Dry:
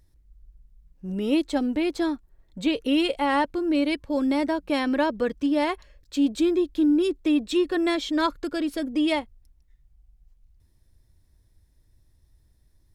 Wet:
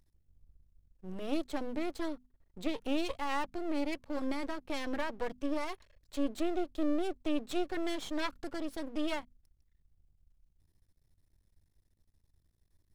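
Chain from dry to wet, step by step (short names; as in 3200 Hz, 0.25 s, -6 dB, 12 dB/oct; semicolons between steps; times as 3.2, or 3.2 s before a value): half-wave rectifier; notches 50/100/150/200/250 Hz; gain -6.5 dB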